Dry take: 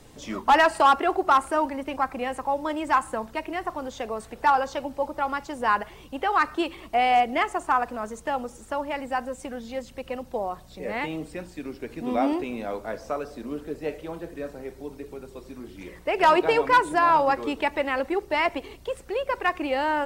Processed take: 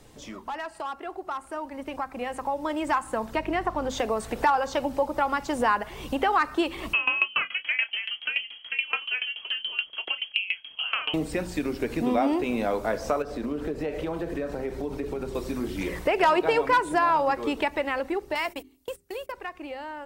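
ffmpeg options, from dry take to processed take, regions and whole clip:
-filter_complex "[0:a]asettb=1/sr,asplit=3[a][b][c];[a]atrim=end=3.354[d];[b]atrim=start=3.35:end=3.9,asetpts=PTS-STARTPTS,afade=t=in:d=0.004:c=qsin,afade=t=out:st=0.546:d=0.004:c=qsin,highshelf=f=6.3k:g=-10.5,aeval=exprs='val(0)+0.00631*(sin(2*PI*50*n/s)+sin(2*PI*2*50*n/s)/2+sin(2*PI*3*50*n/s)/3+sin(2*PI*4*50*n/s)/4+sin(2*PI*5*50*n/s)/5)':c=same[e];[c]atrim=start=3.896[f];[d][e]acrossfade=d=0.004:c1=hsin:c2=qsin[g];[g][f]acrossfade=d=0.004:c1=qsin:c2=hsin,asettb=1/sr,asplit=3[h][i][j];[h]atrim=end=6.934[k];[i]atrim=start=6.93:end=11.14,asetpts=PTS-STARTPTS,afade=t=in:d=0.004:c=qsin,afade=t=out:st=4.206:d=0.004:c=qsin,asplit=2[l][m];[m]adelay=30,volume=-9dB[n];[l][n]amix=inputs=2:normalize=0,atrim=end_sample=185661,lowpass=f=2.8k:t=q:w=0.5098,lowpass=f=2.8k:t=q:w=0.6013,lowpass=f=2.8k:t=q:w=0.9,lowpass=f=2.8k:t=q:w=2.563,afreqshift=-3300,aeval=exprs='val(0)*pow(10,-22*if(lt(mod(7*n/s,1),2*abs(7)/1000),1-mod(7*n/s,1)/(2*abs(7)/1000),(mod(7*n/s,1)-2*abs(7)/1000)/(1-2*abs(7)/1000))/20)':c=same[o];[j]atrim=start=11.136[p];[k][o]acrossfade=d=0.004:c1=hsin:c2=qsin[q];[q][p]acrossfade=d=0.004:c1=qsin:c2=hsin,asettb=1/sr,asplit=3[r][s][t];[r]atrim=end=13.224[u];[s]atrim=start=13.22:end=15.35,asetpts=PTS-STARTPTS,afade=t=in:d=0.004:c=qsin,afade=t=out:st=2.126:d=0.004:c=qsin,acompressor=threshold=-38dB:ratio=4:attack=3.2:release=140:knee=1:detection=peak,highshelf=f=5.8k:g=-10.5[v];[t]atrim=start=15.346[w];[u][v]acrossfade=d=0.004:c1=hsin:c2=qsin[x];[x][w]acrossfade=d=0.004:c1=qsin:c2=hsin,asettb=1/sr,asplit=3[y][z][aa];[y]atrim=end=18.354[ab];[z]atrim=start=18.35:end=19.32,asetpts=PTS-STARTPTS,afade=t=in:d=0.004:c=qsin,afade=t=out:st=0.966:d=0.004:c=qsin,agate=range=-27dB:threshold=-36dB:ratio=16:release=100:detection=peak,aemphasis=mode=production:type=75fm,bandreject=f=50:t=h:w=6,bandreject=f=100:t=h:w=6,bandreject=f=150:t=h:w=6,bandreject=f=200:t=h:w=6,bandreject=f=250:t=h:w=6,bandreject=f=300:t=h:w=6,bandreject=f=350:t=h:w=6,bandreject=f=400:t=h:w=6[ac];[aa]atrim=start=19.316[ad];[ab][ac]acrossfade=d=0.004:c1=hsin:c2=qsin[ae];[ae][ad]acrossfade=d=0.004:c1=qsin:c2=hsin,acompressor=threshold=-38dB:ratio=2.5,bandreject=f=87.46:t=h:w=4,bandreject=f=174.92:t=h:w=4,bandreject=f=262.38:t=h:w=4,dynaudnorm=f=390:g=13:m=14dB,volume=-2dB"

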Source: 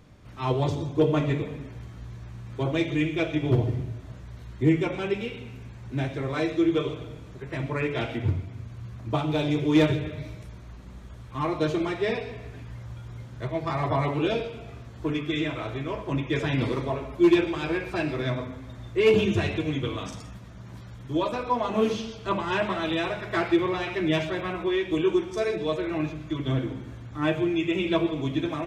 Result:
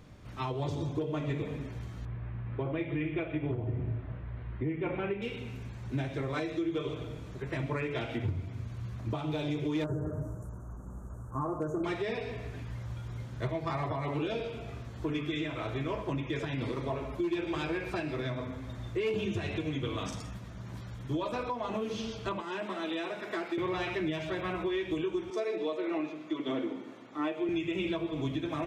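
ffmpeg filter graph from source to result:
-filter_complex "[0:a]asettb=1/sr,asplit=3[a][b][c];[a]atrim=end=2.054[d];[b]atrim=start=2.05:end=5.22,asetpts=PTS-STARTPTS,afade=t=in:d=0.004:c=qsin,afade=t=out:st=3.166:d=0.004:c=qsin,lowpass=f=2.6k:w=0.5412,lowpass=f=2.6k:w=1.3066,asplit=2[e][f];[f]adelay=35,volume=-11dB[g];[e][g]amix=inputs=2:normalize=0,atrim=end_sample=139797[h];[c]atrim=start=5.216[i];[d][h]acrossfade=d=0.004:c1=hsin:c2=qsin[j];[j][i]acrossfade=d=0.004:c1=qsin:c2=hsin,asettb=1/sr,asplit=3[k][l][m];[k]atrim=end=9.844[n];[l]atrim=start=9.84:end=11.84,asetpts=PTS-STARTPTS,afade=t=in:d=0.004:c=qsin,afade=t=out:st=1.996:d=0.004:c=qsin,asuperstop=centerf=3200:order=12:qfactor=0.63,asoftclip=type=hard:threshold=-15.5dB[o];[m]atrim=start=11.836[p];[n][o]acrossfade=d=0.004:c1=hsin:c2=qsin[q];[q][p]acrossfade=d=0.004:c1=qsin:c2=hsin,asettb=1/sr,asplit=3[r][s][t];[r]atrim=end=22.404[u];[s]atrim=start=22.4:end=23.58,asetpts=PTS-STARTPTS,afade=t=in:d=0.004:c=qsin,afade=t=out:st=1.176:d=0.004:c=qsin,highpass=f=230:w=0.5412,highpass=f=230:w=1.3066,acrossover=split=340|5400[v][w][x];[v]acompressor=threshold=-39dB:ratio=4[y];[w]acompressor=threshold=-37dB:ratio=4[z];[x]acompressor=threshold=-60dB:ratio=4[aa];[y][z][aa]amix=inputs=3:normalize=0[ab];[t]atrim=start=23.576[ac];[u][ab]acrossfade=d=0.004:c1=hsin:c2=qsin[ad];[ad][ac]acrossfade=d=0.004:c1=qsin:c2=hsin,asettb=1/sr,asplit=3[ae][af][ag];[ae]atrim=end=25.304[ah];[af]atrim=start=25.3:end=27.49,asetpts=PTS-STARTPTS,afade=t=in:d=0.004:c=qsin,afade=t=out:st=2.186:d=0.004:c=qsin,highpass=f=250:w=0.5412,highpass=f=250:w=1.3066,aemphasis=mode=reproduction:type=cd,bandreject=f=1.6k:w=7.9[ai];[ag]atrim=start=27.486[aj];[ah][ai]acrossfade=d=0.004:c1=hsin:c2=qsin[ak];[ak][aj]acrossfade=d=0.004:c1=qsin:c2=hsin,acompressor=threshold=-26dB:ratio=5,alimiter=limit=-23.5dB:level=0:latency=1:release=391"

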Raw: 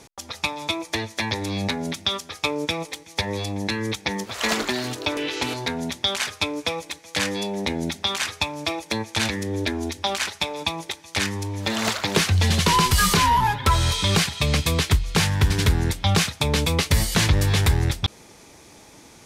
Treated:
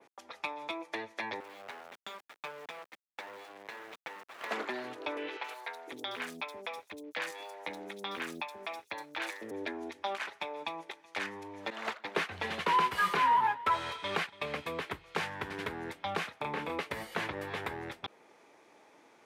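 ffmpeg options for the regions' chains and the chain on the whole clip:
-filter_complex "[0:a]asettb=1/sr,asplit=3[a][b][c];[a]atrim=end=1.404[d];[b]atrim=start=1.4:end=4.51,asetpts=PTS-STARTPTS,afade=t=in:d=0.004:c=qsin,afade=t=out:st=3.106:d=0.004:c=qsin,highpass=540,highshelf=f=5.8k:g=-11,acrusher=bits=3:dc=4:mix=0:aa=0.000001[e];[c]atrim=start=4.506[f];[d][e]acrossfade=d=0.004:c1=hsin:c2=qsin[g];[g][f]acrossfade=d=0.004:c1=qsin:c2=hsin,asettb=1/sr,asplit=3[h][i][j];[h]atrim=end=5.374[k];[i]atrim=start=5.37:end=9.51,asetpts=PTS-STARTPTS,afade=t=in:d=0.004:c=qsin,afade=t=out:st=4.136:d=0.004:c=qsin,aeval=exprs='sgn(val(0))*max(abs(val(0))-0.00891,0)':c=same,highshelf=f=5.2k:g=9.5,acrossover=split=500|4500[l][m][n];[n]adelay=70[o];[l]adelay=500[p];[p][m][o]amix=inputs=3:normalize=0,atrim=end_sample=182574[q];[j]atrim=start=9.506[r];[k][q]acrossfade=d=0.004:c1=hsin:c2=qsin[s];[s][r]acrossfade=d=0.004:c1=qsin:c2=hsin,asettb=1/sr,asplit=3[t][u][v];[t]atrim=end=11.704[w];[u]atrim=start=11.7:end=14.53,asetpts=PTS-STARTPTS,afade=t=in:d=0.004:c=qsin,afade=t=out:st=2.826:d=0.004:c=qsin,agate=range=-33dB:threshold=-20dB:ratio=3:release=100:detection=peak,equalizer=f=2.9k:w=0.3:g=3.5,aecho=1:1:284:0.119,atrim=end_sample=124803[x];[v]atrim=start=14.526[y];[w][x]acrossfade=d=0.004:c1=hsin:c2=qsin[z];[z][y]acrossfade=d=0.004:c1=qsin:c2=hsin,asettb=1/sr,asplit=3[aa][ab][ac];[aa]atrim=end=16.384[ad];[ab]atrim=start=16.38:end=16.79,asetpts=PTS-STARTPTS,afade=t=in:d=0.004:c=qsin,afade=t=out:st=0.406:d=0.004:c=qsin,acrossover=split=2600[ae][af];[af]acompressor=threshold=-31dB:ratio=4:attack=1:release=60[ag];[ae][ag]amix=inputs=2:normalize=0,asplit=2[ah][ai];[ai]adelay=33,volume=-2dB[aj];[ah][aj]amix=inputs=2:normalize=0,atrim=end_sample=18081[ak];[ac]atrim=start=16.786[al];[ad][ak]acrossfade=d=0.004:c1=hsin:c2=qsin[am];[am][al]acrossfade=d=0.004:c1=qsin:c2=hsin,adynamicequalizer=threshold=0.0112:dfrequency=6100:dqfactor=0.74:tfrequency=6100:tqfactor=0.74:attack=5:release=100:ratio=0.375:range=3.5:mode=cutabove:tftype=bell,highpass=150,acrossover=split=320 2700:gain=0.178 1 0.158[an][ao][ap];[an][ao][ap]amix=inputs=3:normalize=0,volume=-8dB"

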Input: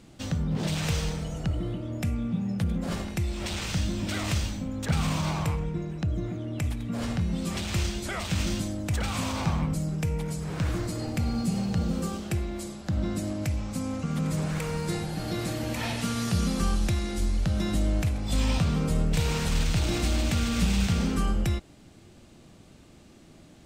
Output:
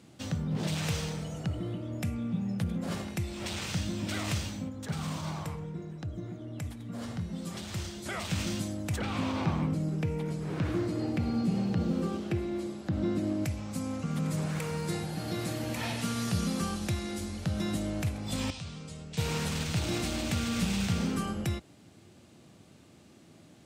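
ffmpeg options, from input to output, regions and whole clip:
-filter_complex "[0:a]asettb=1/sr,asplit=3[a][b][c];[a]atrim=end=4.694[d];[b]atrim=start=4.69:end=8.06,asetpts=PTS-STARTPTS,afade=t=in:d=0.004:c=qsin,afade=t=out:st=3.366:d=0.004:c=qsin,flanger=delay=0.5:depth=6.9:regen=-62:speed=1.6:shape=triangular,volume=22.5dB,asoftclip=hard,volume=-22.5dB,equalizer=f=2.5k:t=o:w=0.36:g=-5[e];[c]atrim=start=8.056[f];[d][e]acrossfade=d=0.004:c1=hsin:c2=qsin[g];[g][f]acrossfade=d=0.004:c1=qsin:c2=hsin,asettb=1/sr,asplit=3[h][i][j];[h]atrim=end=8.984[k];[i]atrim=start=8.98:end=13.45,asetpts=PTS-STARTPTS,afade=t=in:d=0.004:c=qsin,afade=t=out:st=4.466:d=0.004:c=qsin,equalizer=f=330:w=1.6:g=7,acrossover=split=4400[l][m];[m]acompressor=threshold=-56dB:ratio=4:attack=1:release=60[n];[l][n]amix=inputs=2:normalize=0[o];[j]atrim=start=13.446[p];[k][o]acrossfade=d=0.004:c1=hsin:c2=qsin[q];[q][p]acrossfade=d=0.004:c1=qsin:c2=hsin,asettb=1/sr,asplit=3[r][s][t];[r]atrim=end=18.504[u];[s]atrim=start=18.5:end=19.18,asetpts=PTS-STARTPTS,afade=t=in:d=0.004:c=qsin,afade=t=out:st=0.676:d=0.004:c=qsin,lowpass=f=8.7k:w=0.5412,lowpass=f=8.7k:w=1.3066,bass=f=250:g=-10,treble=f=4k:g=-5,acrossover=split=150|3000[v][w][x];[w]acompressor=threshold=-52dB:ratio=2.5:attack=3.2:release=140:knee=2.83:detection=peak[y];[v][y][x]amix=inputs=3:normalize=0[z];[t]atrim=start=19.176[aa];[u][z]acrossfade=d=0.004:c1=hsin:c2=qsin[ab];[ab][aa]acrossfade=d=0.004:c1=qsin:c2=hsin,highpass=f=81:w=0.5412,highpass=f=81:w=1.3066,equalizer=f=11k:w=3.9:g=3,volume=-3dB"

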